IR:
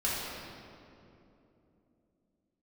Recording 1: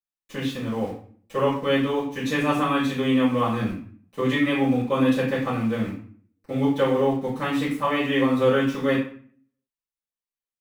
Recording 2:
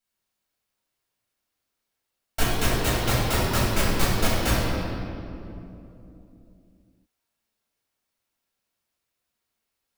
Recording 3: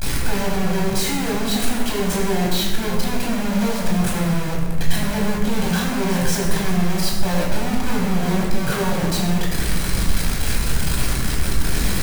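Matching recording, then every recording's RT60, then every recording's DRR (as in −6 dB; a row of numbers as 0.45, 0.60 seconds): 2; 0.50, 3.0, 1.4 seconds; −13.0, −8.5, −4.0 decibels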